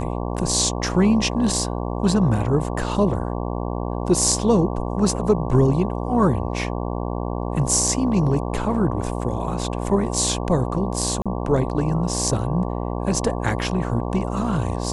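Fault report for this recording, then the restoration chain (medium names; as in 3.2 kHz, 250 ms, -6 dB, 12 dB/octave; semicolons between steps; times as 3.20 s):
buzz 60 Hz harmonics 19 -26 dBFS
11.22–11.26 s: dropout 36 ms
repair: de-hum 60 Hz, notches 19; interpolate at 11.22 s, 36 ms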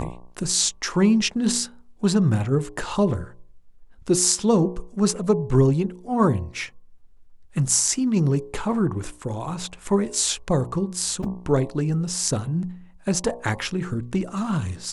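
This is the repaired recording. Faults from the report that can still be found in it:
nothing left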